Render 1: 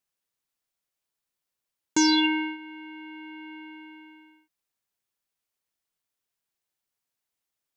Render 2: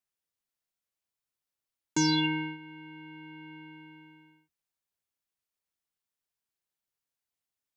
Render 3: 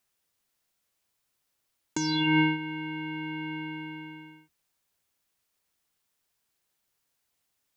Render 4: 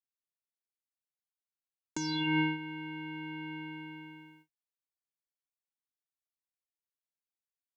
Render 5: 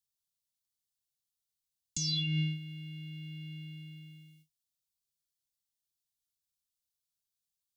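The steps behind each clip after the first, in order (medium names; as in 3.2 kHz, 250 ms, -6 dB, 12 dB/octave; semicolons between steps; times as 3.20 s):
octave divider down 1 oct, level -3 dB; trim -5.5 dB
compressor with a negative ratio -32 dBFS, ratio -1; trim +7.5 dB
gate with hold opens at -45 dBFS; trim -6 dB
inverse Chebyshev band-stop 490–1200 Hz, stop band 70 dB; trim +7.5 dB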